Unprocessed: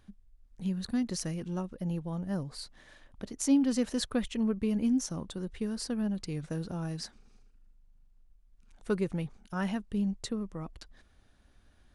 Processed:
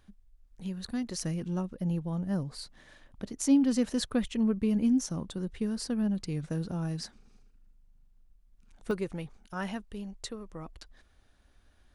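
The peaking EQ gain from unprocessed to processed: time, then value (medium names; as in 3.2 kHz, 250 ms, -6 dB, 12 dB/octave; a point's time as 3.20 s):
peaking EQ 170 Hz 1.6 oct
-4.5 dB
from 1.22 s +3 dB
from 8.91 s -5 dB
from 9.85 s -11.5 dB
from 10.50 s -4.5 dB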